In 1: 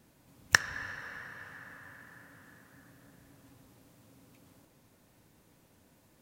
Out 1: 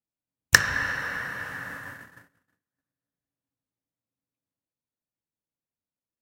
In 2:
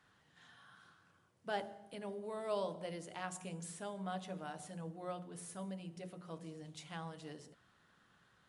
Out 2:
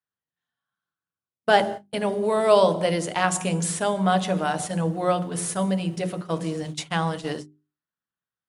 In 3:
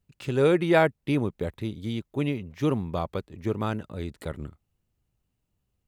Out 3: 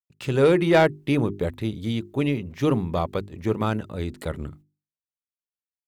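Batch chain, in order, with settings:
noise gate −51 dBFS, range −47 dB
mains-hum notches 50/100/150/200/250/300/350/400 Hz
soft clipping −14 dBFS
loudness normalisation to −24 LKFS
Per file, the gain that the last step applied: +13.0, +21.0, +5.0 decibels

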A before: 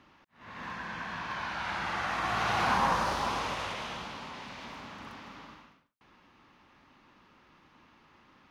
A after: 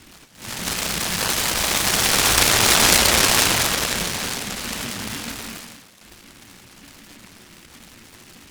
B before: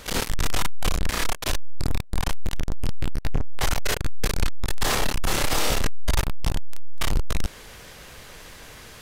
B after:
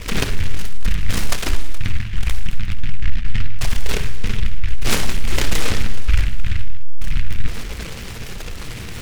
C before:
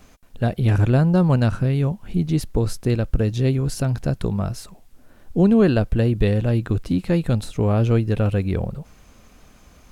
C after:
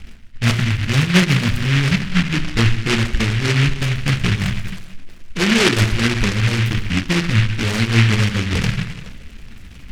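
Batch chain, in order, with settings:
spectral envelope exaggerated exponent 2
Butterworth low-pass 1,400 Hz 36 dB per octave
reversed playback
downward compressor 6 to 1, threshold −28 dBFS
reversed playback
flanger 1.3 Hz, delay 1.6 ms, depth 9.6 ms, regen +26%
feedback echo with a high-pass in the loop 421 ms, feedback 34%, high-pass 480 Hz, level −15 dB
reverb whose tail is shaped and stops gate 350 ms falling, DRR 4 dB
short delay modulated by noise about 2,100 Hz, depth 0.39 ms
normalise the peak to −3 dBFS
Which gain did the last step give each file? +18.0, +17.0, +16.0 decibels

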